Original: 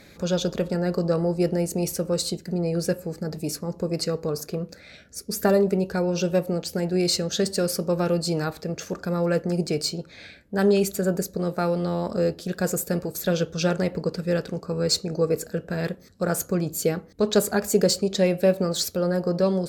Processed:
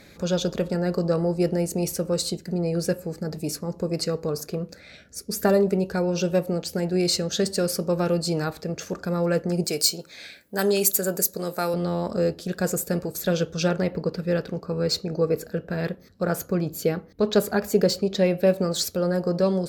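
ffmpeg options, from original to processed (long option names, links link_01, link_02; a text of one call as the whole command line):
ffmpeg -i in.wav -filter_complex "[0:a]asettb=1/sr,asplit=3[link_01][link_02][link_03];[link_01]atrim=end=9.644[link_04];[link_02]atrim=start=9.64:end=11.74,asetpts=PTS-STARTPTS,afade=type=in:duration=0.004:curve=qsin,afade=type=out:start_time=2.096:duration=0.004:curve=qsin,aemphasis=mode=production:type=bsi[link_05];[link_03]atrim=start=11.736[link_06];[link_04][link_05]acrossfade=duration=0.004:curve1=hsin:curve2=qsin[link_07];[link_07][link_06]acrossfade=duration=0.004:curve1=qsin:curve2=hsin,asettb=1/sr,asplit=3[link_08][link_09][link_10];[link_08]atrim=end=13.684[link_11];[link_09]atrim=start=13.68:end=18.47,asetpts=PTS-STARTPTS,afade=type=in:duration=0.004:curve=qsin,afade=type=out:start_time=4.786:duration=0.004:curve=qsin,equalizer=frequency=8100:width_type=o:width=0.89:gain=-9.5[link_12];[link_10]atrim=start=18.466[link_13];[link_11][link_12]acrossfade=duration=0.004:curve1=hsin:curve2=qsin[link_14];[link_14][link_13]acrossfade=duration=0.004:curve1=qsin:curve2=hsin" out.wav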